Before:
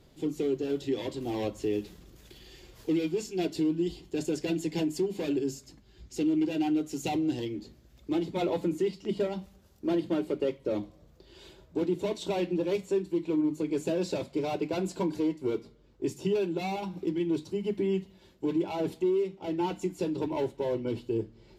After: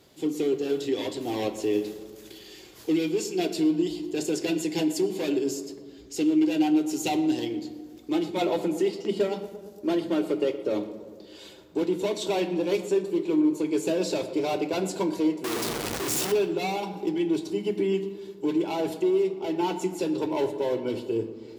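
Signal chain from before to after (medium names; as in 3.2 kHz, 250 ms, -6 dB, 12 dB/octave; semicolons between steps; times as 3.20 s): 15.44–16.32 s: one-bit comparator; high-pass 280 Hz 6 dB/octave; treble shelf 5 kHz +5 dB; tape echo 117 ms, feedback 76%, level -12.5 dB, low-pass 1.5 kHz; on a send at -12.5 dB: reverberation RT60 1.1 s, pre-delay 3 ms; on the sum: trim +4.5 dB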